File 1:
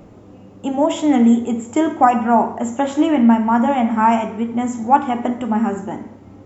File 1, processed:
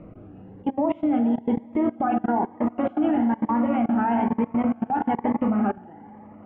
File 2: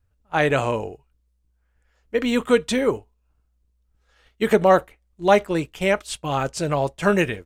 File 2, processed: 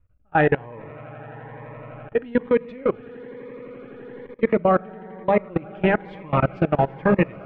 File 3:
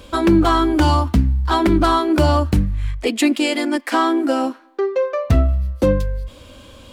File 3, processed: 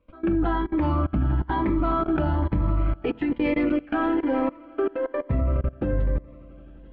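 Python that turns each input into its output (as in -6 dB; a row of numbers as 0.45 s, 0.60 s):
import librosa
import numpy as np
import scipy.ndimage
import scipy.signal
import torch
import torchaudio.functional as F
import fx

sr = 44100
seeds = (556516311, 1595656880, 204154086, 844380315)

y = fx.comb_fb(x, sr, f0_hz=820.0, decay_s=0.15, harmonics='all', damping=0.0, mix_pct=40)
y = fx.rider(y, sr, range_db=4, speed_s=0.5)
y = scipy.signal.sosfilt(scipy.signal.butter(4, 2300.0, 'lowpass', fs=sr, output='sos'), y)
y = fx.echo_swell(y, sr, ms=85, loudest=5, wet_db=-17.0)
y = fx.room_shoebox(y, sr, seeds[0], volume_m3=400.0, walls='furnished', distance_m=0.58)
y = fx.level_steps(y, sr, step_db=23)
y = fx.notch_cascade(y, sr, direction='rising', hz=1.1)
y = y * 10.0 ** (-24 / 20.0) / np.sqrt(np.mean(np.square(y)))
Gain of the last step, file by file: +3.0 dB, +9.0 dB, +2.0 dB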